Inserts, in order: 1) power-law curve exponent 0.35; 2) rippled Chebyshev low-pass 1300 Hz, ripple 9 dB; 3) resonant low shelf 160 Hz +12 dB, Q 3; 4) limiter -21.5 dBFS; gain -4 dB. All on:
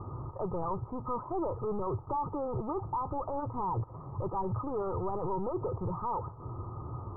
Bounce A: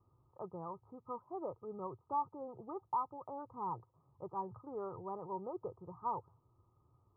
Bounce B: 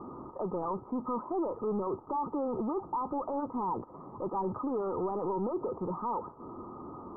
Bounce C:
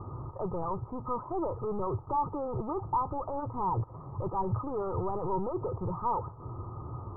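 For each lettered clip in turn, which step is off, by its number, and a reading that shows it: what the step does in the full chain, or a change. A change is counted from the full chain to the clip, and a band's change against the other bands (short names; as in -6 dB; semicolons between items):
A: 1, crest factor change +9.0 dB; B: 3, 125 Hz band -10.5 dB; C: 4, crest factor change +4.5 dB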